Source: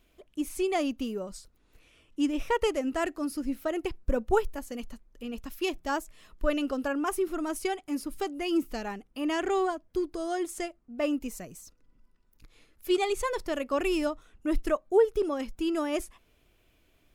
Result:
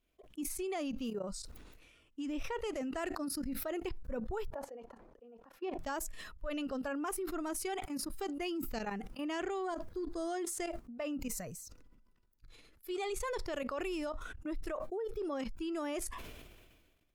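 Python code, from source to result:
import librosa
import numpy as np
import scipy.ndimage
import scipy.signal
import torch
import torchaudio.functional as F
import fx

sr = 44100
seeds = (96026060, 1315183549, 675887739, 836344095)

y = fx.bandpass_q(x, sr, hz=600.0, q=1.2, at=(4.5, 5.79))
y = fx.level_steps(y, sr, step_db=17)
y = fx.noise_reduce_blind(y, sr, reduce_db=9)
y = fx.sustainer(y, sr, db_per_s=36.0)
y = F.gain(torch.from_numpy(y), -2.5).numpy()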